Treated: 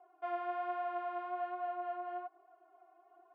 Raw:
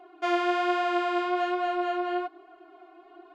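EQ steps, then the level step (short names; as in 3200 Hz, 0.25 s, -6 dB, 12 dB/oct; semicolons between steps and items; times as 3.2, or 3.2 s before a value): ladder band-pass 840 Hz, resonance 30%; -1.0 dB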